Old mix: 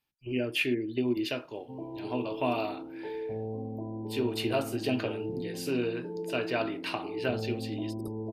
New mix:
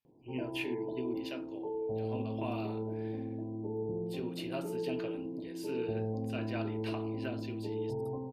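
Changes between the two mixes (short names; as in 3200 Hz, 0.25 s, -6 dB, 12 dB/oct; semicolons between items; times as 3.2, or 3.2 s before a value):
speech -10.0 dB; background: entry -1.40 s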